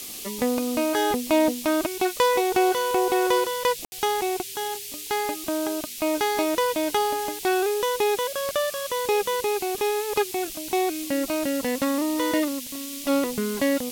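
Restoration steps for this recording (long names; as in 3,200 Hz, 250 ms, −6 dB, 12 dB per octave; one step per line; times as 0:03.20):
click removal
ambience match 0:03.85–0:03.92
noise reduction from a noise print 30 dB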